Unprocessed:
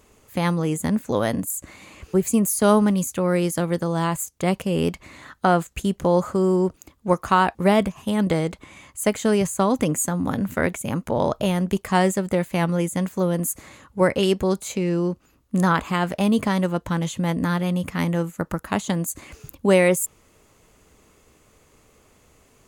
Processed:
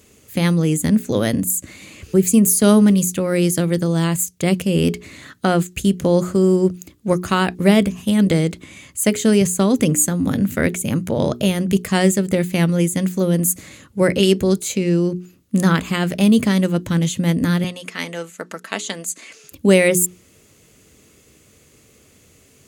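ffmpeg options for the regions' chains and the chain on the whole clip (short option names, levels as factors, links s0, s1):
-filter_complex "[0:a]asettb=1/sr,asplit=3[s0][s1][s2];[s0]atrim=end=17.644[s3];[s1]atrim=start=17.64:end=19.52,asetpts=PTS-STARTPTS,afade=t=in:d=0.004:c=qsin,afade=t=out:st=1.876:d=0.004:c=qsin,highpass=540,lowpass=7900,aecho=1:1:4.5:0.34,atrim=end_sample=82908[s4];[s2]atrim=start=19.516[s5];[s3][s4]acrossfade=d=0.004:c1=hsin:c2=qsin[s6];[s6][s5]acrossfade=d=0.004:c1=qsin:c2=hsin,highpass=79,equalizer=f=930:t=o:w=1.4:g=-13.5,bandreject=f=60:t=h:w=6,bandreject=f=120:t=h:w=6,bandreject=f=180:t=h:w=6,bandreject=f=240:t=h:w=6,bandreject=f=300:t=h:w=6,bandreject=f=360:t=h:w=6,bandreject=f=420:t=h:w=6,volume=2.51"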